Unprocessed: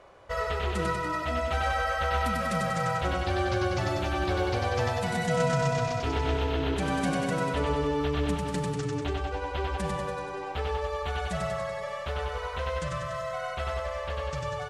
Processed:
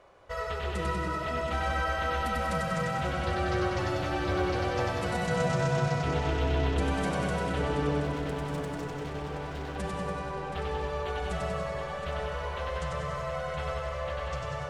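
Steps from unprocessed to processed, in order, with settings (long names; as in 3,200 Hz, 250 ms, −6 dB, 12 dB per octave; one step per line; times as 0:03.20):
0:08.00–0:09.76: hard clipping −35.5 dBFS, distortion −13 dB
tape delay 723 ms, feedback 67%, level −6.5 dB, low-pass 5,100 Hz
on a send at −5.5 dB: convolution reverb RT60 1.3 s, pre-delay 157 ms
on the sum: level −4 dB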